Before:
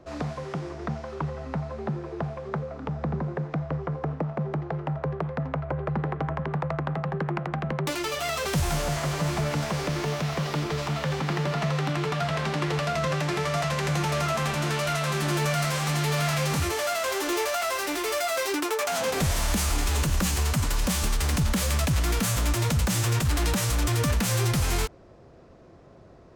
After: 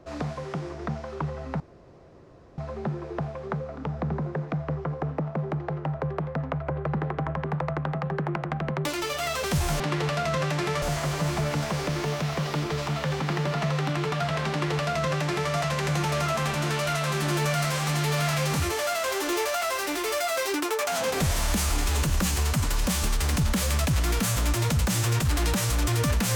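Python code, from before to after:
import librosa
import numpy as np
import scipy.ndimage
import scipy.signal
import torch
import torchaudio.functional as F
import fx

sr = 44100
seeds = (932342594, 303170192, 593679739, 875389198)

y = fx.edit(x, sr, fx.insert_room_tone(at_s=1.6, length_s=0.98),
    fx.duplicate(start_s=12.5, length_s=1.02, to_s=8.82), tone=tone)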